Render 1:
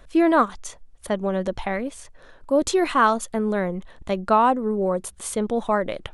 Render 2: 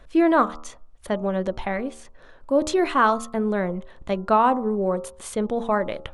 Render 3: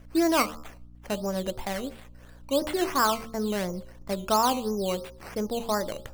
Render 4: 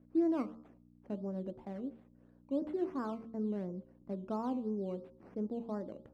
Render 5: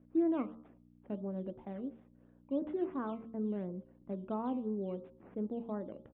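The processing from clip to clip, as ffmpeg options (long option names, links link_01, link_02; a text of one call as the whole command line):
ffmpeg -i in.wav -af "highshelf=frequency=6200:gain=-8.5,bandreject=frequency=76.89:width_type=h:width=4,bandreject=frequency=153.78:width_type=h:width=4,bandreject=frequency=230.67:width_type=h:width=4,bandreject=frequency=307.56:width_type=h:width=4,bandreject=frequency=384.45:width_type=h:width=4,bandreject=frequency=461.34:width_type=h:width=4,bandreject=frequency=538.23:width_type=h:width=4,bandreject=frequency=615.12:width_type=h:width=4,bandreject=frequency=692.01:width_type=h:width=4,bandreject=frequency=768.9:width_type=h:width=4,bandreject=frequency=845.79:width_type=h:width=4,bandreject=frequency=922.68:width_type=h:width=4,bandreject=frequency=999.57:width_type=h:width=4,bandreject=frequency=1076.46:width_type=h:width=4,bandreject=frequency=1153.35:width_type=h:width=4,bandreject=frequency=1230.24:width_type=h:width=4,bandreject=frequency=1307.13:width_type=h:width=4,bandreject=frequency=1384.02:width_type=h:width=4" out.wav
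ffmpeg -i in.wav -af "acrusher=samples=10:mix=1:aa=0.000001:lfo=1:lforange=6:lforate=2.9,bandreject=frequency=74.92:width_type=h:width=4,bandreject=frequency=149.84:width_type=h:width=4,bandreject=frequency=224.76:width_type=h:width=4,bandreject=frequency=299.68:width_type=h:width=4,bandreject=frequency=374.6:width_type=h:width=4,bandreject=frequency=449.52:width_type=h:width=4,bandreject=frequency=524.44:width_type=h:width=4,bandreject=frequency=599.36:width_type=h:width=4,aeval=exprs='val(0)+0.00631*(sin(2*PI*60*n/s)+sin(2*PI*2*60*n/s)/2+sin(2*PI*3*60*n/s)/3+sin(2*PI*4*60*n/s)/4+sin(2*PI*5*60*n/s)/5)':channel_layout=same,volume=-5dB" out.wav
ffmpeg -i in.wav -af "bandpass=frequency=260:width_type=q:width=1.6:csg=0,volume=-4dB" out.wav
ffmpeg -i in.wav -af "aresample=8000,aresample=44100" out.wav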